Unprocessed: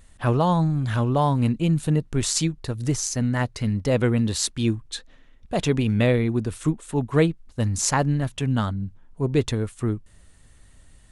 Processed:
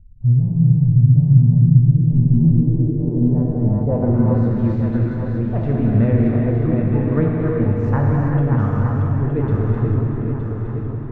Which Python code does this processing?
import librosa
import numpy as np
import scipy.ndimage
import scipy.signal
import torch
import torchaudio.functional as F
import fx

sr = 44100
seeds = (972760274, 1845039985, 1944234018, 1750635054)

p1 = fx.reverse_delay_fb(x, sr, ms=458, feedback_pct=71, wet_db=-4.5)
p2 = fx.tilt_eq(p1, sr, slope=-3.0)
p3 = fx.rev_gated(p2, sr, seeds[0], gate_ms=440, shape='flat', drr_db=-2.0)
p4 = fx.filter_sweep_lowpass(p3, sr, from_hz=140.0, to_hz=1500.0, start_s=1.96, end_s=4.73, q=1.9)
p5 = p4 + fx.echo_single(p4, sr, ms=390, db=-13.0, dry=0)
y = p5 * 10.0 ** (-8.5 / 20.0)